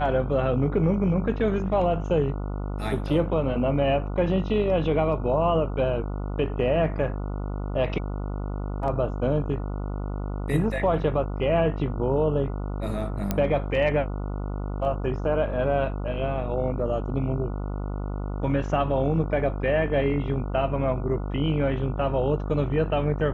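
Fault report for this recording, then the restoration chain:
buzz 50 Hz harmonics 29 -30 dBFS
13.31 pop -10 dBFS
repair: de-click; de-hum 50 Hz, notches 29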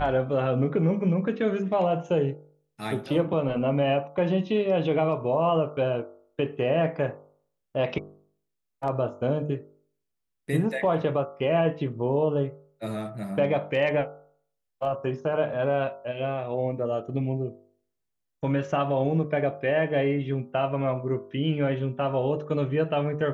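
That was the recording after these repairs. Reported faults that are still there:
none

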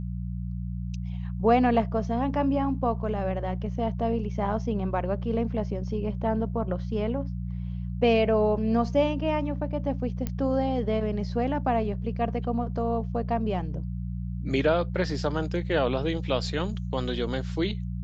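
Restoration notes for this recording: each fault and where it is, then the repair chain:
hum 60 Hz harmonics 3 -32 dBFS
10.27 pop -16 dBFS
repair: de-click; de-hum 60 Hz, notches 3

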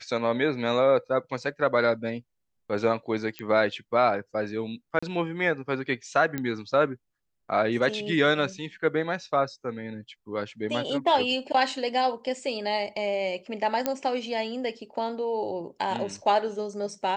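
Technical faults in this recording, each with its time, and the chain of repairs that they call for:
3.39 pop -19 dBFS
4.99–5.03 gap 35 ms
6.38 pop -16 dBFS
13.86 pop -10 dBFS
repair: de-click; interpolate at 4.99, 35 ms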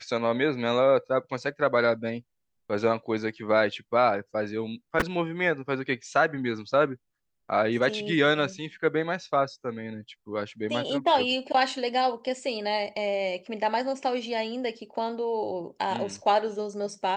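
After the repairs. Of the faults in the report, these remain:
none

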